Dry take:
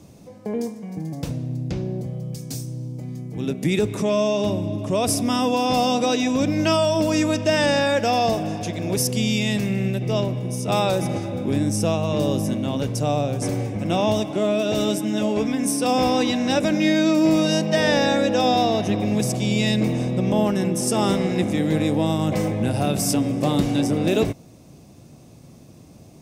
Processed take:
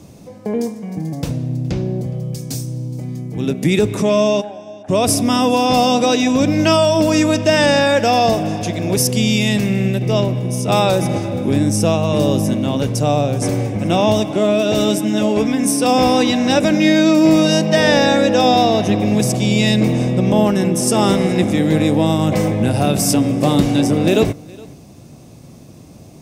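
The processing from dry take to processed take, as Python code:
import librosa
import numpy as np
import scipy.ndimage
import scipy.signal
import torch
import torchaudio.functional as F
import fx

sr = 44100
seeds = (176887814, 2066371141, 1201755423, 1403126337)

y = fx.double_bandpass(x, sr, hz=1100.0, octaves=1.0, at=(4.4, 4.88), fade=0.02)
y = y + 10.0 ** (-23.5 / 20.0) * np.pad(y, (int(417 * sr / 1000.0), 0))[:len(y)]
y = F.gain(torch.from_numpy(y), 6.0).numpy()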